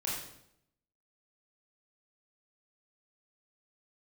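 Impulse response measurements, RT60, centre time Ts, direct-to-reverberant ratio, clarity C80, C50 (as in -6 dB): 0.75 s, 57 ms, -6.0 dB, 4.5 dB, 1.0 dB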